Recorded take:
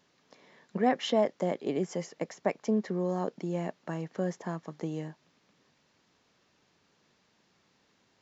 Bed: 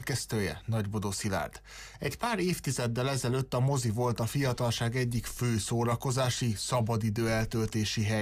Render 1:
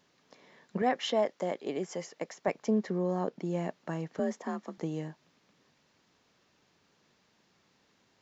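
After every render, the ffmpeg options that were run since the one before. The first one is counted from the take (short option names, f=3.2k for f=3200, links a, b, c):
-filter_complex "[0:a]asettb=1/sr,asplit=3[a][b][c];[a]atrim=end=0.824[d];[b]atrim=start=0.82:end=2.48,asetpts=PTS-STARTPTS,afade=t=in:d=0.004:c=qsin,afade=t=out:st=1.656:d=0.004:c=qsin,lowshelf=f=260:g=-10.5[e];[c]atrim=start=2.476[f];[d][e]acrossfade=d=0.004:c1=hsin:c2=qsin[g];[g][f]acrossfade=d=0.004:c1=qsin:c2=hsin,asettb=1/sr,asplit=3[h][i][j];[h]atrim=end=2.984[k];[i]atrim=start=2.98:end=3.45,asetpts=PTS-STARTPTS,afade=t=in:d=0.004:c=qsin,afade=t=out:st=0.466:d=0.004:c=qsin,highshelf=f=5.4k:g=-7.5[l];[j]atrim=start=3.446[m];[k][l]acrossfade=d=0.004:c1=hsin:c2=qsin[n];[n][m]acrossfade=d=0.004:c1=qsin:c2=hsin,asettb=1/sr,asplit=3[o][p][q];[o]atrim=end=4.194[r];[p]atrim=start=4.19:end=4.78,asetpts=PTS-STARTPTS,afade=t=in:d=0.004:c=qsin,afade=t=out:st=0.586:d=0.004:c=qsin,afreqshift=44[s];[q]atrim=start=4.776[t];[r][s]acrossfade=d=0.004:c1=hsin:c2=qsin[u];[u][t]acrossfade=d=0.004:c1=qsin:c2=hsin"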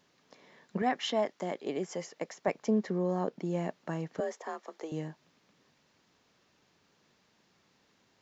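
-filter_complex "[0:a]asettb=1/sr,asplit=3[a][b][c];[a]atrim=end=0.794[d];[b]atrim=start=0.79:end=1.53,asetpts=PTS-STARTPTS,afade=t=in:d=0.004:c=qsin,afade=t=out:st=0.736:d=0.004:c=qsin,equalizer=f=520:t=o:w=0.35:g=-7.5[e];[c]atrim=start=1.526[f];[d][e]acrossfade=d=0.004:c1=hsin:c2=qsin[g];[g][f]acrossfade=d=0.004:c1=qsin:c2=hsin,asettb=1/sr,asplit=3[h][i][j];[h]atrim=end=4.204[k];[i]atrim=start=4.2:end=4.92,asetpts=PTS-STARTPTS,afade=t=in:d=0.004:c=qsin,afade=t=out:st=0.716:d=0.004:c=qsin,highpass=f=380:w=0.5412,highpass=f=380:w=1.3066[l];[j]atrim=start=4.916[m];[k][l]acrossfade=d=0.004:c1=hsin:c2=qsin[n];[n][m]acrossfade=d=0.004:c1=qsin:c2=hsin"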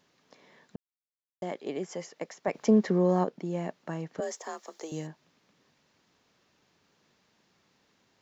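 -filter_complex "[0:a]asplit=3[a][b][c];[a]afade=t=out:st=2.53:d=0.02[d];[b]acontrast=70,afade=t=in:st=2.53:d=0.02,afade=t=out:st=3.23:d=0.02[e];[c]afade=t=in:st=3.23:d=0.02[f];[d][e][f]amix=inputs=3:normalize=0,asettb=1/sr,asplit=3[g][h][i];[g]atrim=end=4.224[j];[h]atrim=start=4.22:end=5.07,asetpts=PTS-STARTPTS,afade=t=in:d=0.004:c=qsin,afade=t=out:st=0.846:d=0.004:c=qsin,bass=f=250:g=0,treble=f=4k:g=13[k];[i]atrim=start=5.066[l];[j][k]acrossfade=d=0.004:c1=hsin:c2=qsin[m];[m][l]acrossfade=d=0.004:c1=qsin:c2=hsin,asplit=3[n][o][p];[n]atrim=end=0.76,asetpts=PTS-STARTPTS,afade=t=out:st=0.756:d=0.004:c=hsin[q];[o]atrim=start=0.76:end=1.42,asetpts=PTS-STARTPTS,volume=0[r];[p]atrim=start=1.42,asetpts=PTS-STARTPTS,afade=t=in:d=0.004:c=hsin[s];[q][r][s]concat=n=3:v=0:a=1"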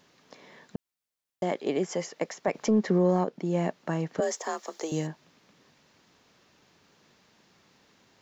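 -af "acontrast=68,alimiter=limit=-15dB:level=0:latency=1:release=419"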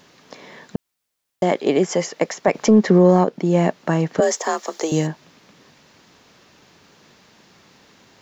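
-af "volume=10.5dB"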